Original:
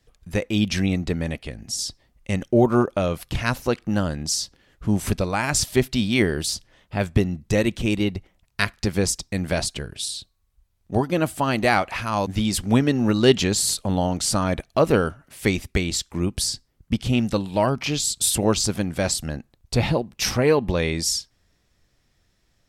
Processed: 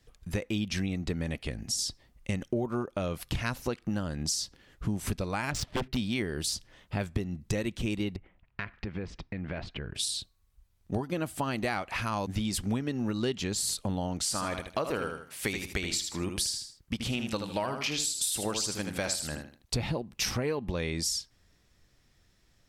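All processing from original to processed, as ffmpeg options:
-filter_complex "[0:a]asettb=1/sr,asplit=3[a][b][c];[a]atrim=end=5.514[d];[b]atrim=start=5.51:end=5.97,asetpts=PTS-STARTPTS,afade=t=in:d=0.004:c=qsin,afade=t=out:st=0.456:d=0.004:c=qsin,highshelf=f=5.1k:g=-7.5,adynamicsmooth=sensitivity=4.5:basefreq=1.6k,aeval=exprs='0.141*(abs(mod(val(0)/0.141+3,4)-2)-1)':c=same[e];[c]atrim=start=5.966[f];[d][e]acrossfade=d=0.004:c1=hsin:c2=qsin[g];[g][f]acrossfade=d=0.004:c1=qsin:c2=hsin,asettb=1/sr,asplit=3[h][i][j];[h]atrim=end=8.164[k];[i]atrim=start=8.16:end=9.95,asetpts=PTS-STARTPTS,afade=t=in:d=0.004:c=qsin,afade=t=out:st=1.786:d=0.004:c=qsin,lowpass=f=2.5k:w=0.5412,lowpass=f=2.5k:w=1.3066,aemphasis=mode=production:type=50fm,acompressor=threshold=-33dB:ratio=4:attack=3.2:release=140:knee=1:detection=peak[l];[j]atrim=start=9.946[m];[k][l]acrossfade=d=0.004:c1=hsin:c2=qsin[n];[n][m]acrossfade=d=0.004:c1=qsin:c2=hsin,asettb=1/sr,asplit=3[o][p][q];[o]atrim=end=14.234[r];[p]atrim=start=14.23:end=19.74,asetpts=PTS-STARTPTS,afade=t=in:d=0.004:c=qsin,afade=t=out:st=5.506:d=0.004:c=qsin,lowshelf=f=400:g=-10.5,aecho=1:1:78|156|234:0.422|0.114|0.0307,atrim=end_sample=242991[s];[q]atrim=start=19.736[t];[r][s]acrossfade=d=0.004:c1=hsin:c2=qsin[u];[u][t]acrossfade=d=0.004:c1=qsin:c2=hsin,equalizer=f=640:t=o:w=0.77:g=-2,acompressor=threshold=-28dB:ratio=6"

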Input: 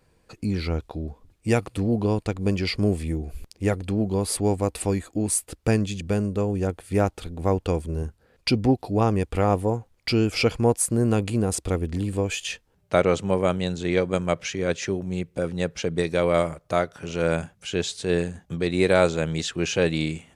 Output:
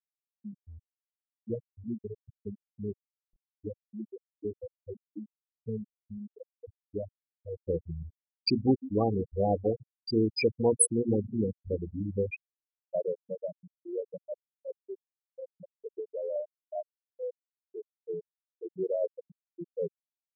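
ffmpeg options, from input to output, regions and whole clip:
-filter_complex "[0:a]asettb=1/sr,asplit=3[a][b][c];[a]atrim=end=7.684[d];[b]atrim=start=7.68:end=12.36,asetpts=PTS-STARTPTS,afade=t=in:d=0.004:c=qsin,afade=t=out:st=4.676:d=0.004:c=qsin,bandreject=f=60:t=h:w=6,bandreject=f=120:t=h:w=6,bandreject=f=180:t=h:w=6,bandreject=f=240:t=h:w=6,bandreject=f=300:t=h:w=6,bandreject=f=360:t=h:w=6,acontrast=75,asplit=2[e][f];[f]adelay=152,lowpass=f=3.3k:p=1,volume=-13dB,asplit=2[g][h];[h]adelay=152,lowpass=f=3.3k:p=1,volume=0.28,asplit=2[i][j];[j]adelay=152,lowpass=f=3.3k:p=1,volume=0.28[k];[e][g][i][k]amix=inputs=4:normalize=0,atrim=end_sample=206388[l];[c]atrim=start=12.356[m];[d][l]acrossfade=d=0.004:c1=hsin:c2=qsin[n];[n][m]acrossfade=d=0.004:c1=qsin:c2=hsin,afftfilt=real='re*gte(hypot(re,im),0.562)':imag='im*gte(hypot(re,im),0.562)':win_size=1024:overlap=0.75,highpass=f=710:p=1,equalizer=f=1.5k:w=0.38:g=-12.5,volume=2dB"

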